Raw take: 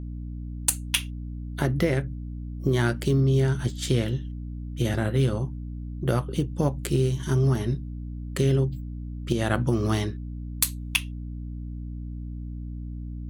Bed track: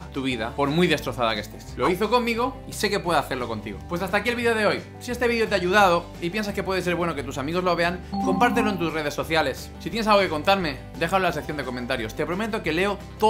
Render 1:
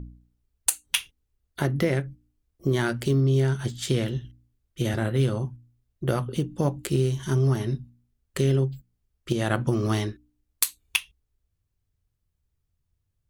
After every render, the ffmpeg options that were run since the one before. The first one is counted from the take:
-af "bandreject=f=60:t=h:w=4,bandreject=f=120:t=h:w=4,bandreject=f=180:t=h:w=4,bandreject=f=240:t=h:w=4,bandreject=f=300:t=h:w=4"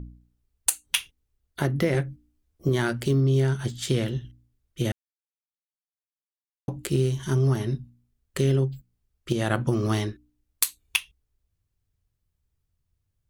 -filter_complex "[0:a]asettb=1/sr,asplit=3[s0][s1][s2];[s0]atrim=end=1.934[s3];[s1]atrim=start=1.93:end=2.69,asetpts=PTS-STARTPTS,afade=t=in:d=0.004:c=qsin,afade=t=out:st=0.756:d=0.004:c=qsin,asplit=2[s4][s5];[s5]adelay=13,volume=0.708[s6];[s4][s6]amix=inputs=2:normalize=0,atrim=end_sample=33516[s7];[s2]atrim=start=2.686[s8];[s3][s7]acrossfade=d=0.004:c1=hsin:c2=qsin[s9];[s9][s8]acrossfade=d=0.004:c1=qsin:c2=hsin,asplit=3[s10][s11][s12];[s10]atrim=end=4.92,asetpts=PTS-STARTPTS,afade=t=out:st=4.916:d=0.004:c=hsin[s13];[s11]atrim=start=4.92:end=6.68,asetpts=PTS-STARTPTS,volume=0[s14];[s12]atrim=start=6.68,asetpts=PTS-STARTPTS,afade=t=in:d=0.004:c=hsin[s15];[s13][s14][s15]concat=n=3:v=0:a=1"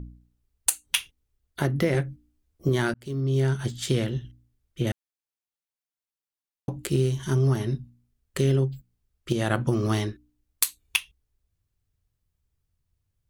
-filter_complex "[0:a]asettb=1/sr,asplit=3[s0][s1][s2];[s0]atrim=end=4.064[s3];[s1]atrim=start=4.06:end=4.87,asetpts=PTS-STARTPTS,afade=t=in:d=0.004:c=qsin,afade=t=out:st=0.806:d=0.004:c=qsin,acrossover=split=3400[s4][s5];[s5]acompressor=threshold=0.00251:ratio=4:attack=1:release=60[s6];[s4][s6]amix=inputs=2:normalize=0[s7];[s2]atrim=start=4.866[s8];[s3][s7]acrossfade=d=0.004:c1=hsin:c2=qsin[s9];[s9][s8]acrossfade=d=0.004:c1=qsin:c2=hsin,asplit=2[s10][s11];[s10]atrim=end=2.94,asetpts=PTS-STARTPTS,afade=t=out:st=2.936:d=0.004:c=hsin[s12];[s11]atrim=start=2.94,asetpts=PTS-STARTPTS,afade=t=in:d=0.53[s13];[s12][s13]concat=n=2:v=0:a=1"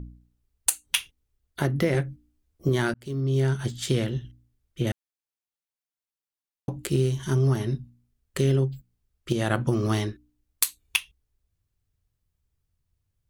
-af anull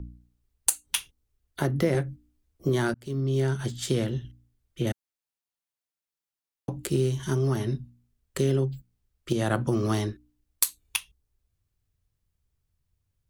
-filter_complex "[0:a]acrossover=split=180|1800|3300[s0][s1][s2][s3];[s0]alimiter=level_in=1.33:limit=0.0631:level=0:latency=1,volume=0.75[s4];[s2]acompressor=threshold=0.00355:ratio=6[s5];[s4][s1][s5][s3]amix=inputs=4:normalize=0"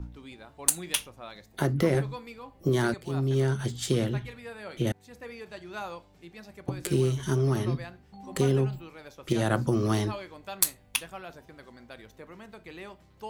-filter_complex "[1:a]volume=0.0944[s0];[0:a][s0]amix=inputs=2:normalize=0"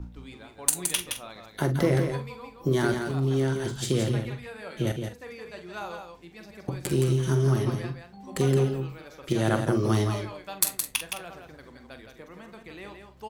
-filter_complex "[0:a]asplit=2[s0][s1];[s1]adelay=45,volume=0.316[s2];[s0][s2]amix=inputs=2:normalize=0,aecho=1:1:168:0.501"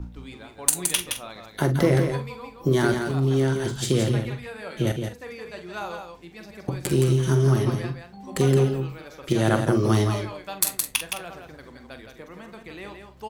-af "volume=1.5,alimiter=limit=0.794:level=0:latency=1"

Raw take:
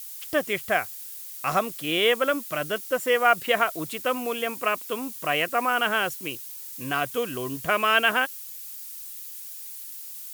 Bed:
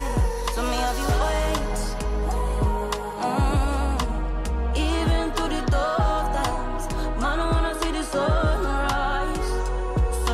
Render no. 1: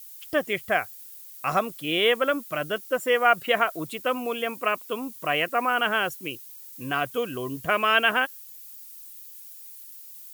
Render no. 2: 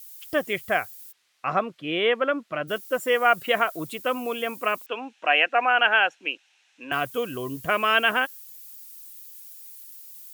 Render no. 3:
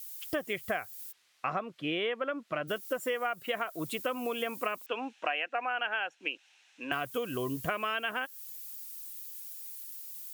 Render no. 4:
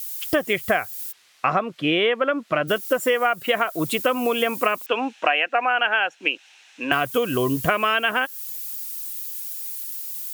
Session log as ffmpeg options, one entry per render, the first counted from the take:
-af "afftdn=nr=8:nf=-40"
-filter_complex "[0:a]asplit=3[s0][s1][s2];[s0]afade=t=out:st=1.11:d=0.02[s3];[s1]highpass=120,lowpass=2800,afade=t=in:st=1.11:d=0.02,afade=t=out:st=2.67:d=0.02[s4];[s2]afade=t=in:st=2.67:d=0.02[s5];[s3][s4][s5]amix=inputs=3:normalize=0,asettb=1/sr,asplit=3[s6][s7][s8];[s6]atrim=end=4.864[s9];[s7]atrim=start=4.86:end=6.92,asetpts=PTS-STARTPTS,afade=t=in:d=0.004:c=qsin,afade=t=out:st=2.056:d=0.004:c=qsin,highpass=f=290:w=0.5412,highpass=f=290:w=1.3066,equalizer=f=370:t=q:w=4:g=-7,equalizer=f=810:t=q:w=4:g=10,equalizer=f=1100:t=q:w=4:g=-5,equalizer=f=1600:t=q:w=4:g=7,equalizer=f=2600:t=q:w=4:g=9,equalizer=f=4700:t=q:w=4:g=-10,lowpass=f=4900:w=0.5412,lowpass=f=4900:w=1.3066[s10];[s8]atrim=start=6.916[s11];[s9][s10]acrossfade=d=0.004:c1=hsin:c2=qsin[s12];[s12][s11]acrossfade=d=0.004:c1=qsin:c2=hsin"
-af "acompressor=threshold=0.0355:ratio=10"
-af "volume=3.98"

